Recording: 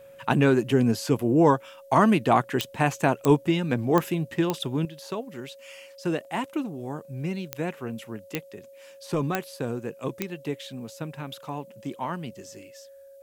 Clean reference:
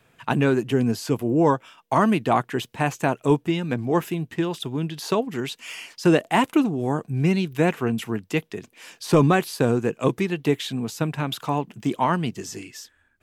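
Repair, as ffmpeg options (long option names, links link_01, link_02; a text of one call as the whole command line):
ffmpeg -i in.wav -af "adeclick=threshold=4,bandreject=frequency=550:width=30,agate=range=-21dB:threshold=-41dB,asetnsamples=nb_out_samples=441:pad=0,asendcmd='4.85 volume volume 10dB',volume=0dB" out.wav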